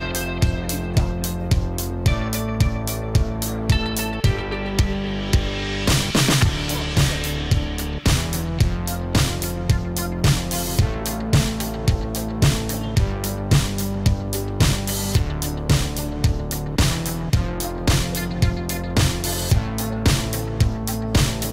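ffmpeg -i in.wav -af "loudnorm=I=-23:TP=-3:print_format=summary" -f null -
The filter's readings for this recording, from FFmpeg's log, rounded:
Input Integrated:    -21.8 LUFS
Input True Peak:      -6.2 dBTP
Input LRA:             1.6 LU
Input Threshold:     -31.8 LUFS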